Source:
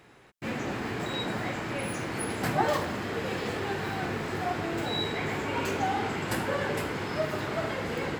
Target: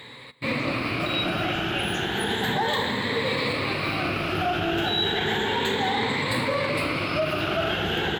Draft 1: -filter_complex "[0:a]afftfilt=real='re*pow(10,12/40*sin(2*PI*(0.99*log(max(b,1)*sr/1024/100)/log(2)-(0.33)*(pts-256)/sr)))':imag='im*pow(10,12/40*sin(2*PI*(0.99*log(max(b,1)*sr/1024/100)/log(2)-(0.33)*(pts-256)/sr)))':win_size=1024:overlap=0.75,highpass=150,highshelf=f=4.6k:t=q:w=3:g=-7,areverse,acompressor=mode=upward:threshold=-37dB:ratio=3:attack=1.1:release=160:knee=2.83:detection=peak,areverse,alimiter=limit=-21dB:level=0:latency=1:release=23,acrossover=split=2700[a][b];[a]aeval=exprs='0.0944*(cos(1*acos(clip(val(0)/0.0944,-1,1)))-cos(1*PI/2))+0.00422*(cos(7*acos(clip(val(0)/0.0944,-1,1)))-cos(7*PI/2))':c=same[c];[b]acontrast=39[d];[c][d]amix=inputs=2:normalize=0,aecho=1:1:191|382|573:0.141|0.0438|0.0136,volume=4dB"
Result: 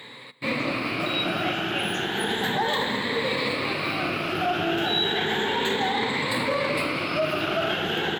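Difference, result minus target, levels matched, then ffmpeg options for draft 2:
125 Hz band -4.0 dB
-filter_complex "[0:a]afftfilt=real='re*pow(10,12/40*sin(2*PI*(0.99*log(max(b,1)*sr/1024/100)/log(2)-(0.33)*(pts-256)/sr)))':imag='im*pow(10,12/40*sin(2*PI*(0.99*log(max(b,1)*sr/1024/100)/log(2)-(0.33)*(pts-256)/sr)))':win_size=1024:overlap=0.75,highshelf=f=4.6k:t=q:w=3:g=-7,areverse,acompressor=mode=upward:threshold=-37dB:ratio=3:attack=1.1:release=160:knee=2.83:detection=peak,areverse,alimiter=limit=-21dB:level=0:latency=1:release=23,acrossover=split=2700[a][b];[a]aeval=exprs='0.0944*(cos(1*acos(clip(val(0)/0.0944,-1,1)))-cos(1*PI/2))+0.00422*(cos(7*acos(clip(val(0)/0.0944,-1,1)))-cos(7*PI/2))':c=same[c];[b]acontrast=39[d];[c][d]amix=inputs=2:normalize=0,aecho=1:1:191|382|573:0.141|0.0438|0.0136,volume=4dB"

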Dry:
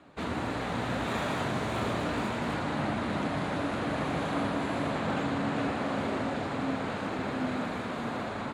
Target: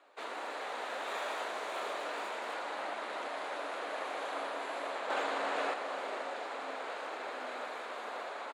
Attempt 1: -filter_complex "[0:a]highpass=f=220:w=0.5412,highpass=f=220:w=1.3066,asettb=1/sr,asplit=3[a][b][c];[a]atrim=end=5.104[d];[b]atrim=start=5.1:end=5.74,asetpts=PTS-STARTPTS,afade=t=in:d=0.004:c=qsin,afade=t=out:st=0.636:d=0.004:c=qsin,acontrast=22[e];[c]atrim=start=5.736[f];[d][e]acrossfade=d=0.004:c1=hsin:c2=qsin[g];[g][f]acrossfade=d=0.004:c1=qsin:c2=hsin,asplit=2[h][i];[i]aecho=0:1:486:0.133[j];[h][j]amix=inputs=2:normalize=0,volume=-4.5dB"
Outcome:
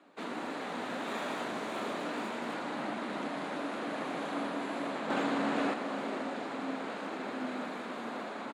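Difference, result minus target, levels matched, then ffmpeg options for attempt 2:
250 Hz band +13.5 dB
-filter_complex "[0:a]highpass=f=450:w=0.5412,highpass=f=450:w=1.3066,asettb=1/sr,asplit=3[a][b][c];[a]atrim=end=5.104[d];[b]atrim=start=5.1:end=5.74,asetpts=PTS-STARTPTS,afade=t=in:d=0.004:c=qsin,afade=t=out:st=0.636:d=0.004:c=qsin,acontrast=22[e];[c]atrim=start=5.736[f];[d][e]acrossfade=d=0.004:c1=hsin:c2=qsin[g];[g][f]acrossfade=d=0.004:c1=qsin:c2=hsin,asplit=2[h][i];[i]aecho=0:1:486:0.133[j];[h][j]amix=inputs=2:normalize=0,volume=-4.5dB"

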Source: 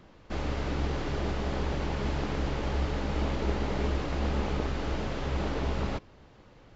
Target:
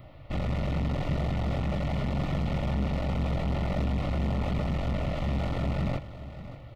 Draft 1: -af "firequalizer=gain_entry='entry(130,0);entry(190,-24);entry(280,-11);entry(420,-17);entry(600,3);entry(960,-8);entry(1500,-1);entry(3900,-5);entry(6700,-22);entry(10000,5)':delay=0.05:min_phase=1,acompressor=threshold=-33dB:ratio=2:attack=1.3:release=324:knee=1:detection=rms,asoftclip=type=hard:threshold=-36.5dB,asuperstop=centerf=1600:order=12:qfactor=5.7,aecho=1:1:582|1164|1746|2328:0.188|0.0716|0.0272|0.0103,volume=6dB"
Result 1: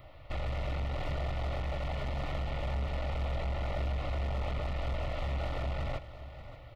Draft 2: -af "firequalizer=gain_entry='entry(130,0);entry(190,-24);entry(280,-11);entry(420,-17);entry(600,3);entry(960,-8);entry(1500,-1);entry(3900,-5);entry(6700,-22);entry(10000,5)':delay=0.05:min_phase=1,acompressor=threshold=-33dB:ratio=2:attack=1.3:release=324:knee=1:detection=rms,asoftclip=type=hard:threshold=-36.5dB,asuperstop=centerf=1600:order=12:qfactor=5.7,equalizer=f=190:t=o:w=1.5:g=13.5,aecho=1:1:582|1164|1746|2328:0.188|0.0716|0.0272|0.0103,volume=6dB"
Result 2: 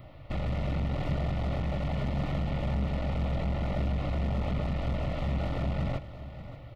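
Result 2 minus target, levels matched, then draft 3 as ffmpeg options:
compressor: peak gain reduction +7 dB
-af "firequalizer=gain_entry='entry(130,0);entry(190,-24);entry(280,-11);entry(420,-17);entry(600,3);entry(960,-8);entry(1500,-1);entry(3900,-5);entry(6700,-22);entry(10000,5)':delay=0.05:min_phase=1,asoftclip=type=hard:threshold=-36.5dB,asuperstop=centerf=1600:order=12:qfactor=5.7,equalizer=f=190:t=o:w=1.5:g=13.5,aecho=1:1:582|1164|1746|2328:0.188|0.0716|0.0272|0.0103,volume=6dB"

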